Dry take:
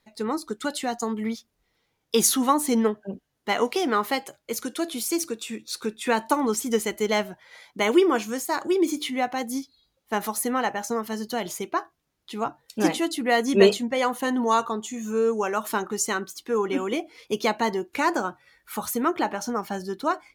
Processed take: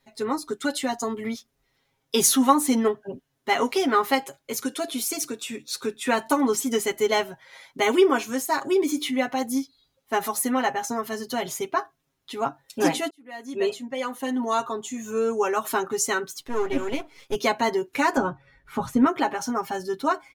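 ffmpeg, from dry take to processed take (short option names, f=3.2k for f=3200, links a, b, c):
-filter_complex "[0:a]asettb=1/sr,asplit=3[a][b][c];[a]atrim=end=16.404[d];[b]atrim=start=16.4:end=17.35,asetpts=PTS-STARTPTS,afade=t=in:d=0.004:c=qsin,afade=t=out:st=0.946:d=0.004:c=qsin,aeval=exprs='if(lt(val(0),0),0.251*val(0),val(0))':c=same[e];[c]atrim=start=17.346[f];[d][e]acrossfade=d=0.004:c1=hsin:c2=qsin[g];[g][f]acrossfade=d=0.004:c1=qsin:c2=hsin,asettb=1/sr,asplit=3[h][i][j];[h]atrim=end=18.174[k];[i]atrim=start=18.17:end=19.06,asetpts=PTS-STARTPTS,afade=t=in:d=0.004:c=qsin,afade=t=out:st=0.886:d=0.004:c=qsin,aemphasis=mode=reproduction:type=riaa[l];[j]atrim=start=19.056[m];[k][l]acrossfade=d=0.004:c1=hsin:c2=qsin[n];[n][m]acrossfade=d=0.004:c1=qsin:c2=hsin,asplit=2[o][p];[o]atrim=end=13.1,asetpts=PTS-STARTPTS,afade=t=out:st=13.096:d=0.004:c=hsin[q];[p]atrim=start=13.1,asetpts=PTS-STARTPTS,afade=t=in:d=2.16[r];[q][r]concat=n=2:v=0:a=1,bandreject=f=4.6k:w=23,aecho=1:1:7.4:0.92,volume=-1dB"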